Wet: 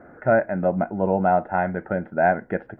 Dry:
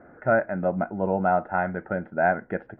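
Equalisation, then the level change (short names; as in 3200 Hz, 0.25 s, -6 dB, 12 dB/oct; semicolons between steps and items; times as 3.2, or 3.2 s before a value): dynamic EQ 1300 Hz, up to -6 dB, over -41 dBFS, Q 3.3; +3.5 dB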